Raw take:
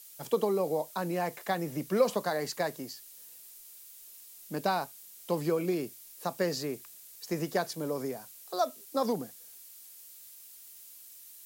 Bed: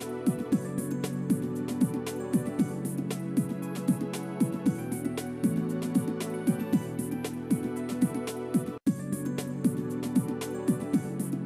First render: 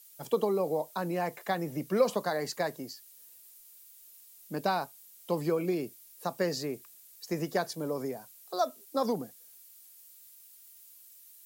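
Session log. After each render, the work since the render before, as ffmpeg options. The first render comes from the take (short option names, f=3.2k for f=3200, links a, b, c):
-af "afftdn=nr=6:nf=-52"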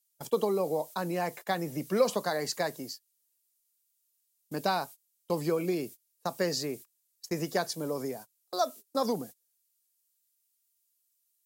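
-af "agate=range=-24dB:threshold=-44dB:ratio=16:detection=peak,equalizer=f=7k:t=o:w=2.2:g=5"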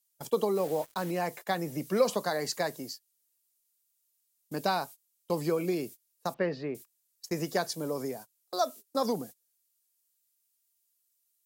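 -filter_complex "[0:a]asplit=3[a][b][c];[a]afade=t=out:st=0.55:d=0.02[d];[b]acrusher=bits=6:mix=0:aa=0.5,afade=t=in:st=0.55:d=0.02,afade=t=out:st=1.1:d=0.02[e];[c]afade=t=in:st=1.1:d=0.02[f];[d][e][f]amix=inputs=3:normalize=0,asettb=1/sr,asplit=3[g][h][i];[g]atrim=end=6.344[j];[h]atrim=start=6.34:end=6.75,asetpts=PTS-STARTPTS,afade=t=in:d=0.004:c=qsin,afade=t=out:st=0.406:d=0.004:c=qsin,lowpass=f=2.9k:w=0.5412,lowpass=f=2.9k:w=1.3066[k];[i]atrim=start=6.746[l];[j][k]acrossfade=d=0.004:c1=hsin:c2=qsin[m];[m][l]acrossfade=d=0.004:c1=qsin:c2=hsin"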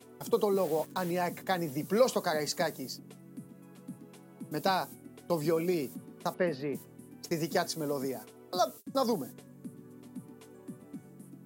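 -filter_complex "[1:a]volume=-18.5dB[a];[0:a][a]amix=inputs=2:normalize=0"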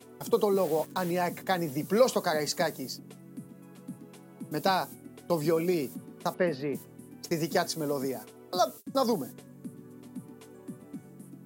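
-af "volume=2.5dB"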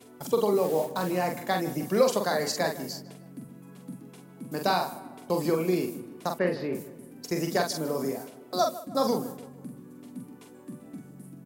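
-filter_complex "[0:a]asplit=2[a][b];[b]adelay=44,volume=-5dB[c];[a][c]amix=inputs=2:normalize=0,asplit=2[d][e];[e]adelay=153,lowpass=f=2.6k:p=1,volume=-15.5dB,asplit=2[f][g];[g]adelay=153,lowpass=f=2.6k:p=1,volume=0.5,asplit=2[h][i];[i]adelay=153,lowpass=f=2.6k:p=1,volume=0.5,asplit=2[j][k];[k]adelay=153,lowpass=f=2.6k:p=1,volume=0.5,asplit=2[l][m];[m]adelay=153,lowpass=f=2.6k:p=1,volume=0.5[n];[d][f][h][j][l][n]amix=inputs=6:normalize=0"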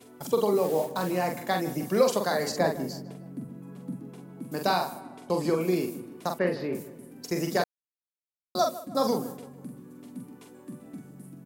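-filter_complex "[0:a]asettb=1/sr,asplit=3[a][b][c];[a]atrim=end=2.494[d];[b]atrim=start=2.49:end=4.42,asetpts=PTS-STARTPTS,afade=t=in:d=0.004:c=qsin,afade=t=out:st=1.926:d=0.004:c=qsin,tiltshelf=f=1.3k:g=5[e];[c]atrim=start=4.416[f];[d][e]acrossfade=d=0.004:c1=hsin:c2=qsin[g];[g][f]acrossfade=d=0.004:c1=qsin:c2=hsin,asettb=1/sr,asplit=3[h][i][j];[h]atrim=end=5.014[k];[i]atrim=start=5.01:end=5.61,asetpts=PTS-STARTPTS,afade=t=in:d=0.004:c=qsin,afade=t=out:st=0.596:d=0.004:c=qsin,lowpass=9.9k[l];[j]atrim=start=5.606[m];[k][l]acrossfade=d=0.004:c1=hsin:c2=qsin[n];[n][m]acrossfade=d=0.004:c1=qsin:c2=hsin,asplit=3[o][p][q];[o]atrim=end=7.64,asetpts=PTS-STARTPTS,afade=t=out:st=7.636:d=0.004:c=hsin[r];[p]atrim=start=7.64:end=8.55,asetpts=PTS-STARTPTS,volume=0[s];[q]atrim=start=8.55,asetpts=PTS-STARTPTS,afade=t=in:d=0.004:c=hsin[t];[r][s][t]concat=n=3:v=0:a=1"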